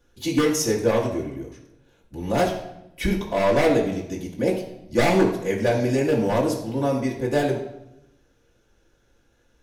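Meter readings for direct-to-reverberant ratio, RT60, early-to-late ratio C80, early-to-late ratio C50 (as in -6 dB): -5.0 dB, 0.85 s, 9.5 dB, 6.5 dB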